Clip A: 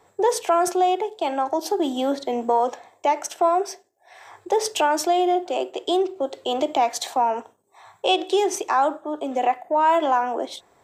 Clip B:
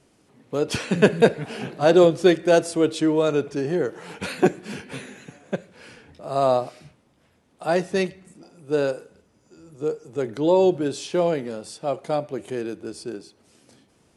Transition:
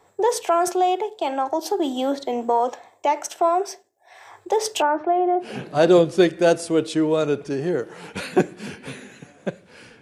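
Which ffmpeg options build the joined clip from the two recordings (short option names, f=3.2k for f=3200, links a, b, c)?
-filter_complex "[0:a]asettb=1/sr,asplit=3[a][b][c];[a]atrim=end=4.824[d];[b]atrim=start=4.82:end=5.54,asetpts=PTS-STARTPTS,afade=t=in:d=0.004:c=qsin,afade=t=out:st=0.716:d=0.004:c=qsin,lowpass=f=1.8k:w=0.5412,lowpass=f=1.8k:w=1.3066[e];[c]atrim=start=5.536[f];[d][e]acrossfade=d=0.004:c1=hsin:c2=qsin[g];[g][f]acrossfade=d=0.004:c1=qsin:c2=hsin,apad=whole_dur=10.01,atrim=end=10.01,atrim=end=5.54,asetpts=PTS-STARTPTS[h];[1:a]atrim=start=1.44:end=6.07,asetpts=PTS-STARTPTS[i];[h][i]acrossfade=d=0.16:c1=tri:c2=tri"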